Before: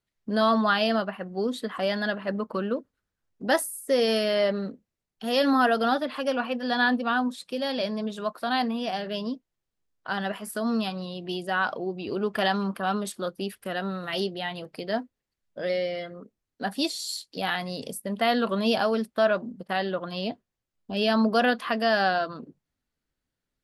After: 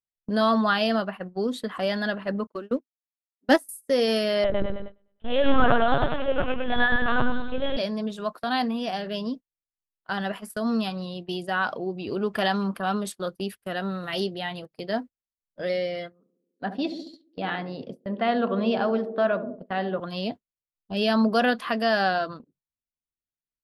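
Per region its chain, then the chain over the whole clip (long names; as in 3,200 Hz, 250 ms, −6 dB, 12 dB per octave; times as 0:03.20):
0:02.47–0:03.69: leveller curve on the samples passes 1 + low shelf with overshoot 180 Hz −14 dB, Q 3 + expander for the loud parts 2.5 to 1, over −38 dBFS
0:04.44–0:07.77: repeating echo 104 ms, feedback 52%, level −3 dB + linear-prediction vocoder at 8 kHz pitch kept
0:16.12–0:20.00: high-pass filter 110 Hz + high-frequency loss of the air 300 metres + feedback echo with a band-pass in the loop 69 ms, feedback 84%, band-pass 340 Hz, level −8 dB
whole clip: noise gate −36 dBFS, range −22 dB; low-shelf EQ 130 Hz +5.5 dB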